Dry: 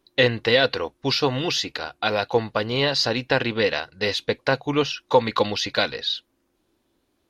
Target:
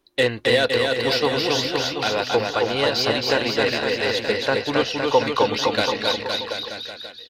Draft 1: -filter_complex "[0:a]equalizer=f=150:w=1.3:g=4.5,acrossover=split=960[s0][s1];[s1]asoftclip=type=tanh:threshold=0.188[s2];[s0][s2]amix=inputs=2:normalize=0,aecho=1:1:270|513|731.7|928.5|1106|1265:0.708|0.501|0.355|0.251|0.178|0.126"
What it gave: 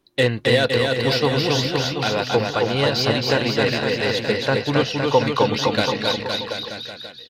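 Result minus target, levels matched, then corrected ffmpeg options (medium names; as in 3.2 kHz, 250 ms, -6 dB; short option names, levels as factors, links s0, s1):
125 Hz band +8.0 dB
-filter_complex "[0:a]equalizer=f=150:w=1.3:g=-6.5,acrossover=split=960[s0][s1];[s1]asoftclip=type=tanh:threshold=0.188[s2];[s0][s2]amix=inputs=2:normalize=0,aecho=1:1:270|513|731.7|928.5|1106|1265:0.708|0.501|0.355|0.251|0.178|0.126"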